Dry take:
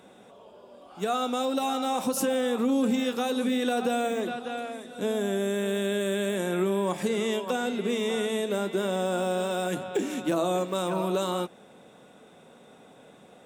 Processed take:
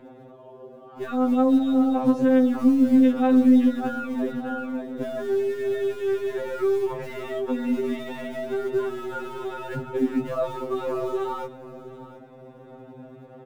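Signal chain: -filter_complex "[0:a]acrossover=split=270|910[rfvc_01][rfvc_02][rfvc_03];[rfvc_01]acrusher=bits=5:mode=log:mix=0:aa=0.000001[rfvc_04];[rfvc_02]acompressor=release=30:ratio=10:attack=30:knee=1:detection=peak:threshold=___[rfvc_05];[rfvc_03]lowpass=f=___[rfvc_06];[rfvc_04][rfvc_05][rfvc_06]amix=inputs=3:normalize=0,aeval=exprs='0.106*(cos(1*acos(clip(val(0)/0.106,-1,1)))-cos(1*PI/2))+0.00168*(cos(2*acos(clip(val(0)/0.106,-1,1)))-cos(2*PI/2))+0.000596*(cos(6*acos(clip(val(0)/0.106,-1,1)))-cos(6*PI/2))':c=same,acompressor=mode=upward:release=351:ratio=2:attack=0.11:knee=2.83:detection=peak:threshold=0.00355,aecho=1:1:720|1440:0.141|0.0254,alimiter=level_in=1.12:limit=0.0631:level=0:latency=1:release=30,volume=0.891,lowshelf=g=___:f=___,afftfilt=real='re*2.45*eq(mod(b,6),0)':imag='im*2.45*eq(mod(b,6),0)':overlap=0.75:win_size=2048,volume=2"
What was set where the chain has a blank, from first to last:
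0.00794, 1.6k, 10, 330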